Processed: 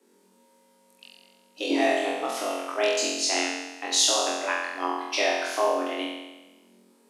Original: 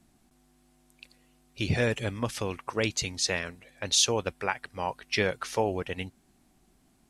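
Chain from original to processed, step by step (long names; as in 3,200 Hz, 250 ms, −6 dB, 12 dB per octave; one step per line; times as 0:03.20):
flutter between parallel walls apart 3.9 metres, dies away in 1.1 s
frequency shifter +190 Hz
level −2 dB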